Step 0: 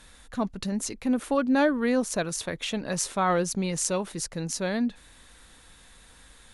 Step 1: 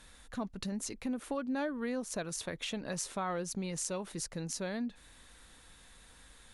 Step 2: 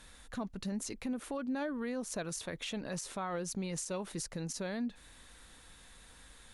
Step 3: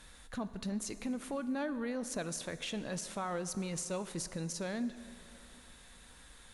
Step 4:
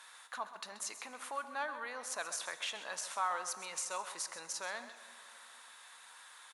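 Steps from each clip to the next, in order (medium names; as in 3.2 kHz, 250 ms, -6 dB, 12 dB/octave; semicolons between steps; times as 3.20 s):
compression 2.5:1, threshold -31 dBFS, peak gain reduction 9 dB; trim -4.5 dB
peak limiter -30 dBFS, peak gain reduction 11.5 dB; trim +1 dB
plate-style reverb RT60 2.7 s, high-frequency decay 0.7×, DRR 12 dB
resonant high-pass 1 kHz, resonance Q 2; delay 131 ms -13 dB; trim +1 dB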